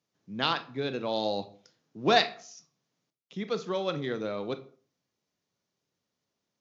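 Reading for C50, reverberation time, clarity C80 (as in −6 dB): 15.0 dB, 0.45 s, 20.0 dB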